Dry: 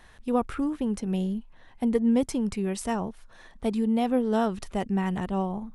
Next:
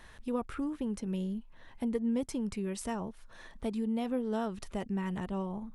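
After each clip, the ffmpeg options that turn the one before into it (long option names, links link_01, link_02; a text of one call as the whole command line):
ffmpeg -i in.wav -af "bandreject=frequency=750:width=12,acompressor=threshold=-44dB:ratio=1.5" out.wav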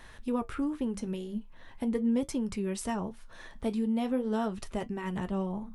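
ffmpeg -i in.wav -af "flanger=delay=7.3:depth=6.2:regen=-64:speed=0.41:shape=triangular,volume=7dB" out.wav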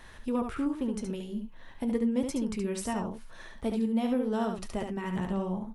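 ffmpeg -i in.wav -af "aecho=1:1:71:0.531" out.wav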